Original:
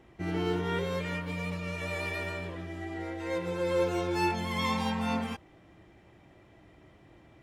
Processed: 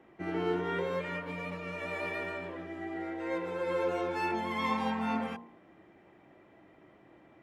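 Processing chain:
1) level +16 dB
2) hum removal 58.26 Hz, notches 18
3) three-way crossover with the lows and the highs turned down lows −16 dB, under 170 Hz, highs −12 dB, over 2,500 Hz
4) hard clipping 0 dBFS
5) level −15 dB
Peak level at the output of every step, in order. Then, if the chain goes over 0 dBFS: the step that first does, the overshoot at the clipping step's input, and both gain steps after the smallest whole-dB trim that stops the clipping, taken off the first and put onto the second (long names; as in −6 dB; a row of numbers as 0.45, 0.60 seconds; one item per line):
−1.0, −3.0, −4.5, −4.5, −19.5 dBFS
no step passes full scale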